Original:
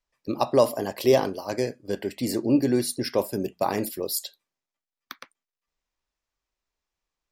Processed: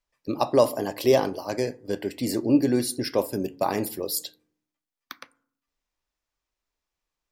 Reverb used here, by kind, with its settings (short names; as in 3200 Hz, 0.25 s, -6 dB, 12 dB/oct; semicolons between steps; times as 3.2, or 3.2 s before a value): FDN reverb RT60 0.58 s, low-frequency decay 1.55×, high-frequency decay 0.4×, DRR 16.5 dB